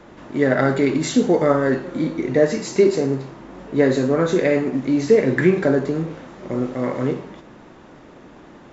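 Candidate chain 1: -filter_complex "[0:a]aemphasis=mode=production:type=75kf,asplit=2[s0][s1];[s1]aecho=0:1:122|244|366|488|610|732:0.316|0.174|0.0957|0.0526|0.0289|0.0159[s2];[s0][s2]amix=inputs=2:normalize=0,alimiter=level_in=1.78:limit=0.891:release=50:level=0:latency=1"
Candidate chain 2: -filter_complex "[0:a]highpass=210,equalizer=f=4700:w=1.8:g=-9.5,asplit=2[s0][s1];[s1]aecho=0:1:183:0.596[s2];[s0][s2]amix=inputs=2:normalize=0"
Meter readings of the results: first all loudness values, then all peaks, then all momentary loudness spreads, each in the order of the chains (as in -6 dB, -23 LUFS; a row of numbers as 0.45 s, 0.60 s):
-14.0 LUFS, -19.0 LUFS; -1.0 dBFS, -2.5 dBFS; 12 LU, 13 LU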